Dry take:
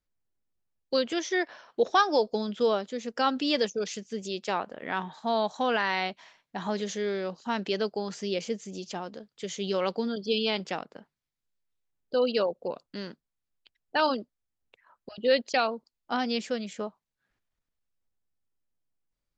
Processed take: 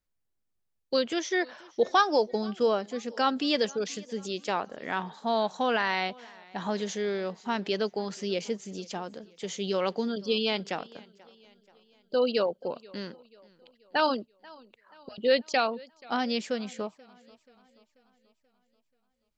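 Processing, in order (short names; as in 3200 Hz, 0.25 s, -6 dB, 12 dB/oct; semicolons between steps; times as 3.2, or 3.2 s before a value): 2.13–2.95 notch 3600 Hz, Q 5.3; warbling echo 0.484 s, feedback 50%, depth 81 cents, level -24 dB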